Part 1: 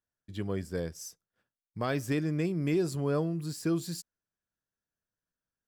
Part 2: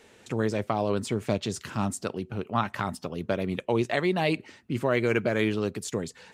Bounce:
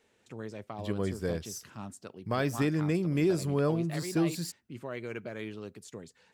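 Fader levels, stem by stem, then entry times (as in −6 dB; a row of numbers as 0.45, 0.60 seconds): +1.5, −14.0 decibels; 0.50, 0.00 seconds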